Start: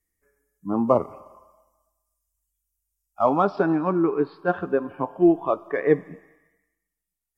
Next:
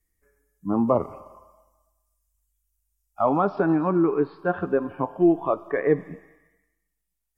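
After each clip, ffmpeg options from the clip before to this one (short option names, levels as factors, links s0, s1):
-filter_complex "[0:a]acrossover=split=2800[s0][s1];[s1]acompressor=threshold=0.001:ratio=4:attack=1:release=60[s2];[s0][s2]amix=inputs=2:normalize=0,lowshelf=f=83:g=8.5,asplit=2[s3][s4];[s4]alimiter=limit=0.188:level=0:latency=1:release=76,volume=1.41[s5];[s3][s5]amix=inputs=2:normalize=0,volume=0.473"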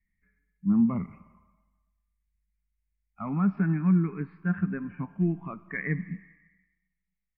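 -af "firequalizer=gain_entry='entry(120,0);entry(190,12);entry(300,-9);entry(510,-22);entry(2100,9);entry(3300,-19)':delay=0.05:min_phase=1,volume=0.708"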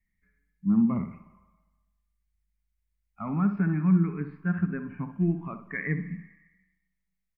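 -filter_complex "[0:a]asplit=2[s0][s1];[s1]adelay=64,lowpass=f=1700:p=1,volume=0.355,asplit=2[s2][s3];[s3]adelay=64,lowpass=f=1700:p=1,volume=0.34,asplit=2[s4][s5];[s5]adelay=64,lowpass=f=1700:p=1,volume=0.34,asplit=2[s6][s7];[s7]adelay=64,lowpass=f=1700:p=1,volume=0.34[s8];[s0][s2][s4][s6][s8]amix=inputs=5:normalize=0"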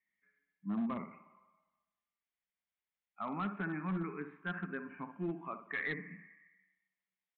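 -af "highpass=410,aresample=8000,asoftclip=type=hard:threshold=0.0335,aresample=44100,volume=0.841"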